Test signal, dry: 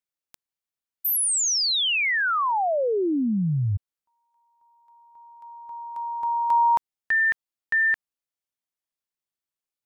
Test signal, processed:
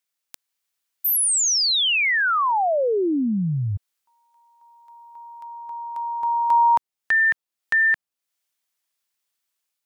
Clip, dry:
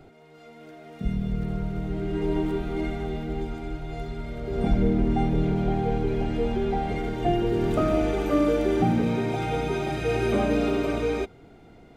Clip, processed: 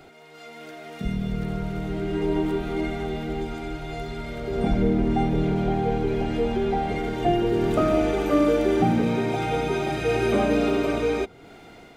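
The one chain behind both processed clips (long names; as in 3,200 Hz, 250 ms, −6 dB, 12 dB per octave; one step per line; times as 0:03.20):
low-shelf EQ 140 Hz −6 dB
automatic gain control gain up to 3 dB
one half of a high-frequency compander encoder only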